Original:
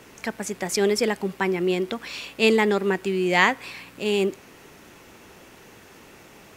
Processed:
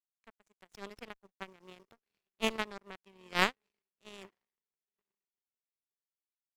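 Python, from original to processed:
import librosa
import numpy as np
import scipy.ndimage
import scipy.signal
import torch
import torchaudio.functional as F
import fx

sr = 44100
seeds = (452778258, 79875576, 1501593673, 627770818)

y = fx.tracing_dist(x, sr, depth_ms=0.034)
y = fx.echo_diffused(y, sr, ms=925, feedback_pct=42, wet_db=-15)
y = fx.power_curve(y, sr, exponent=3.0)
y = fx.running_max(y, sr, window=3, at=(0.95, 2.62))
y = y * librosa.db_to_amplitude(-3.5)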